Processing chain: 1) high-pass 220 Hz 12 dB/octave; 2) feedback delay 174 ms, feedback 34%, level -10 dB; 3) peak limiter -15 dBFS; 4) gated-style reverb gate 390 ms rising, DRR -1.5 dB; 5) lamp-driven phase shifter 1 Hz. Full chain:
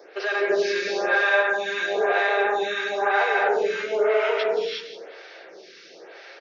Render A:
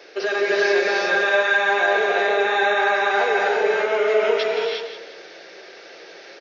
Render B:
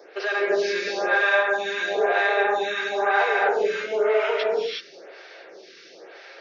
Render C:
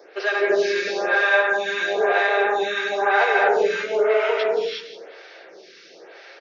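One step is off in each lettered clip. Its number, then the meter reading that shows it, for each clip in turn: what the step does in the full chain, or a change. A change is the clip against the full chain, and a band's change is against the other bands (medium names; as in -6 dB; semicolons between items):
5, loudness change +3.5 LU; 2, momentary loudness spread change -1 LU; 3, loudness change +2.5 LU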